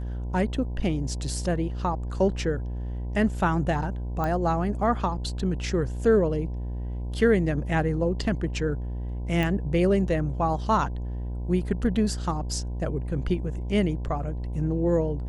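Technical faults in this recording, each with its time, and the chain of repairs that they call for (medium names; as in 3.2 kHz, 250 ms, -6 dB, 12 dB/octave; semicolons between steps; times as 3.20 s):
buzz 60 Hz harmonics 17 -31 dBFS
4.24 s: pop -17 dBFS
9.43 s: pop -15 dBFS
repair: de-click; de-hum 60 Hz, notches 17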